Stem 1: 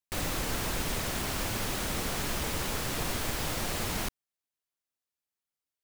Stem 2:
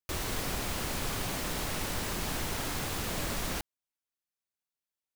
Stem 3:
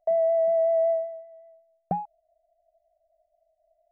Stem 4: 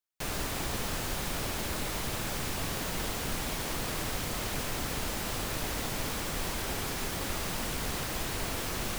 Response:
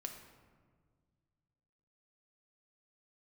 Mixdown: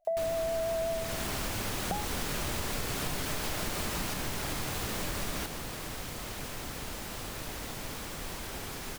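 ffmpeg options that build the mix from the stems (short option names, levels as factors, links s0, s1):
-filter_complex "[0:a]acompressor=mode=upward:threshold=0.00501:ratio=2.5,adelay=50,volume=0.891,asplit=2[s0][s1];[s1]volume=0.501[s2];[1:a]adelay=1850,volume=0.708,asplit=2[s3][s4];[s4]volume=0.944[s5];[2:a]volume=0.944[s6];[3:a]adelay=1850,volume=0.531[s7];[4:a]atrim=start_sample=2205[s8];[s2][s5]amix=inputs=2:normalize=0[s9];[s9][s8]afir=irnorm=-1:irlink=0[s10];[s0][s3][s6][s7][s10]amix=inputs=5:normalize=0,acompressor=threshold=0.0316:ratio=5"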